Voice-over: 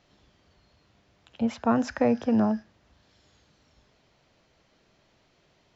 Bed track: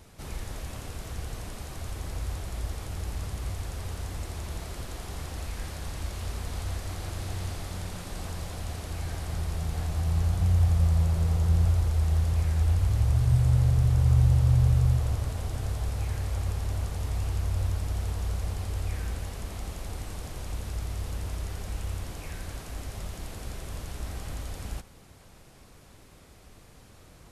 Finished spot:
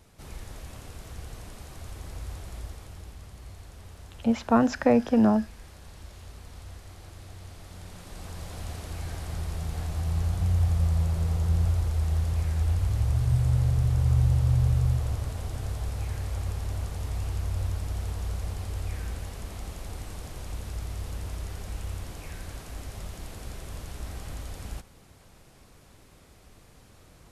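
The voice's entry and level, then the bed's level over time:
2.85 s, +2.5 dB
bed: 0:02.55 −4.5 dB
0:03.16 −11 dB
0:07.45 −11 dB
0:08.63 −1.5 dB

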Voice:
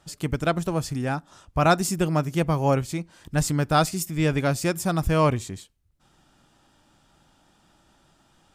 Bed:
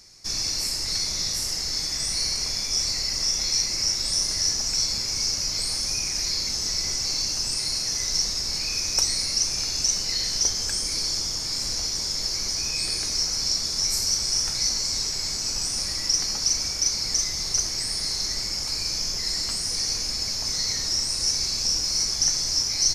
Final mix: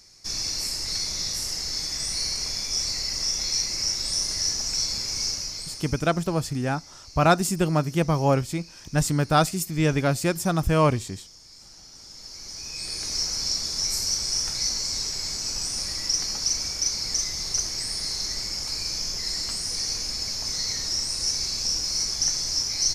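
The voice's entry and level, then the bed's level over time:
5.60 s, +0.5 dB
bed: 0:05.28 −2 dB
0:06.25 −20.5 dB
0:11.85 −20.5 dB
0:13.16 −2 dB

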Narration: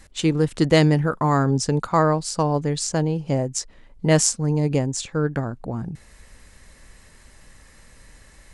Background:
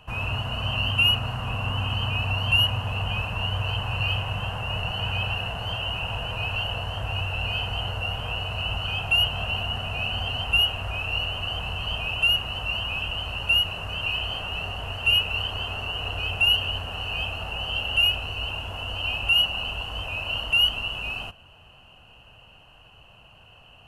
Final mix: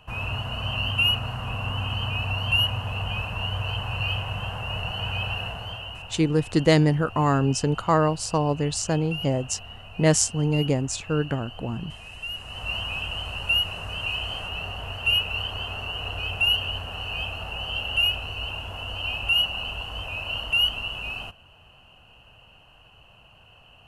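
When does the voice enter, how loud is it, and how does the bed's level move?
5.95 s, −2.0 dB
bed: 0:05.46 −1.5 dB
0:06.24 −13.5 dB
0:12.28 −13.5 dB
0:12.70 −1.5 dB

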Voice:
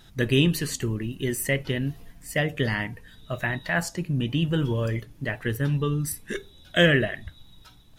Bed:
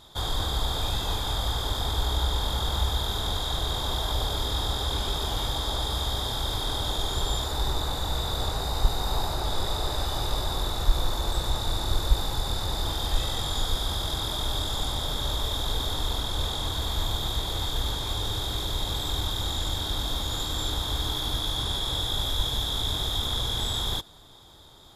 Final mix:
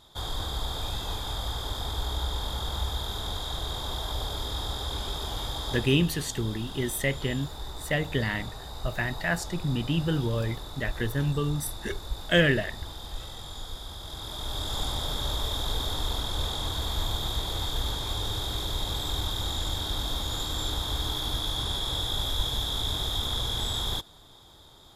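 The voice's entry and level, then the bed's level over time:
5.55 s, −2.5 dB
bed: 0:05.73 −4.5 dB
0:05.97 −11.5 dB
0:13.99 −11.5 dB
0:14.78 −1.5 dB

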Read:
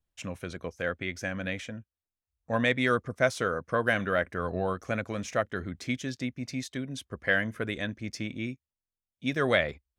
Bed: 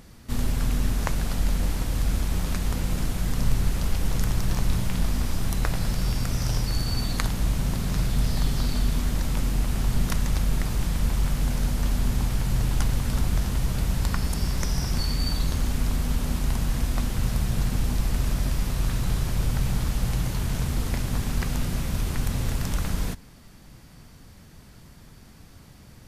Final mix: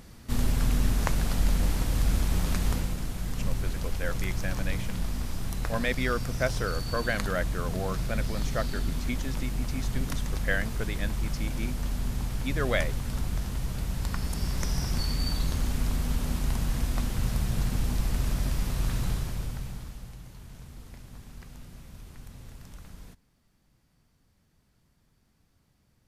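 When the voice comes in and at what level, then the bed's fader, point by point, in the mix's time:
3.20 s, −3.5 dB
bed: 0:02.73 −0.5 dB
0:02.97 −6.5 dB
0:13.91 −6.5 dB
0:14.68 −3 dB
0:19.05 −3 dB
0:20.18 −19.5 dB

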